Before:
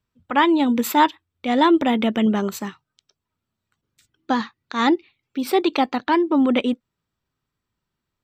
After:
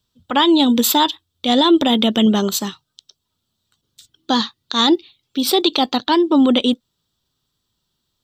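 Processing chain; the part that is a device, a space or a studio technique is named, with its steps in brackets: over-bright horn tweeter (resonant high shelf 2800 Hz +7 dB, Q 3; limiter -10 dBFS, peak gain reduction 7 dB); gain +4.5 dB

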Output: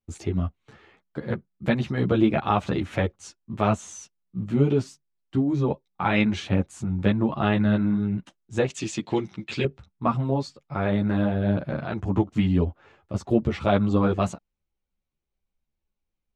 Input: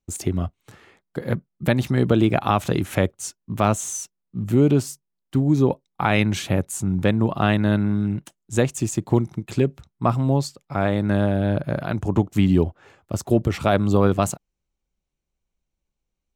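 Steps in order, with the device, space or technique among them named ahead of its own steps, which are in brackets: string-machine ensemble chorus (ensemble effect; LPF 4300 Hz 12 dB/oct); 8.7–9.65 weighting filter D

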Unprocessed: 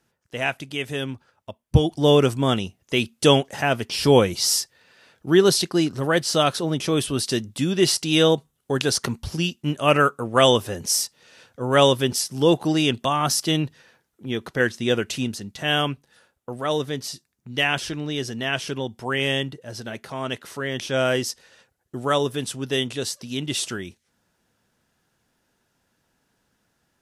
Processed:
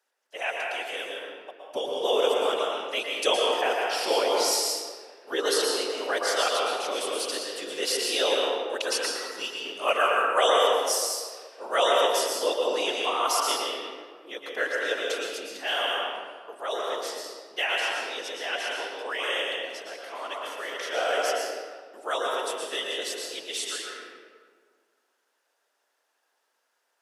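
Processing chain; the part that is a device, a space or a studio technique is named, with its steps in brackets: whispering ghost (whisperiser; HPF 470 Hz 24 dB/oct; reverb RT60 1.7 s, pre-delay 0.108 s, DRR -2 dB); gain -6 dB

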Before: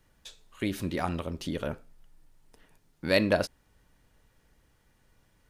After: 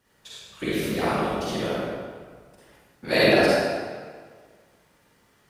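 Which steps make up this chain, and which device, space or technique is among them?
whispering ghost (whisperiser; HPF 250 Hz 6 dB/oct; reverb RT60 1.7 s, pre-delay 39 ms, DRR -8.5 dB)

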